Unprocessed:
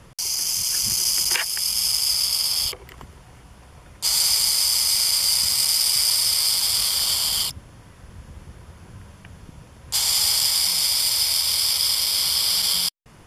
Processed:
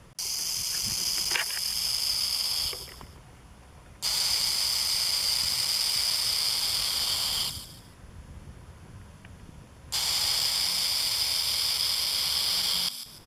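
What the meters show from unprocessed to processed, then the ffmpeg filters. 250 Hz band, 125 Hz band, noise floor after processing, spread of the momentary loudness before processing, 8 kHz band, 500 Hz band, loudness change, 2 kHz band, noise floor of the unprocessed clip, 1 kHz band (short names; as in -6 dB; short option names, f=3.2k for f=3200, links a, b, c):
n/a, -3.5 dB, -51 dBFS, 5 LU, -9.0 dB, -3.0 dB, -6.5 dB, -3.0 dB, -48 dBFS, -3.0 dB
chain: -filter_complex "[0:a]asplit=4[a][b][c][d];[b]adelay=148,afreqshift=62,volume=-12.5dB[e];[c]adelay=296,afreqshift=124,volume=-22.1dB[f];[d]adelay=444,afreqshift=186,volume=-31.8dB[g];[a][e][f][g]amix=inputs=4:normalize=0,aeval=exprs='0.596*(cos(1*acos(clip(val(0)/0.596,-1,1)))-cos(1*PI/2))+0.0168*(cos(7*acos(clip(val(0)/0.596,-1,1)))-cos(7*PI/2))':c=same,acrossover=split=5300[h][i];[i]acompressor=threshold=-28dB:ratio=4:attack=1:release=60[j];[h][j]amix=inputs=2:normalize=0,volume=-2.5dB"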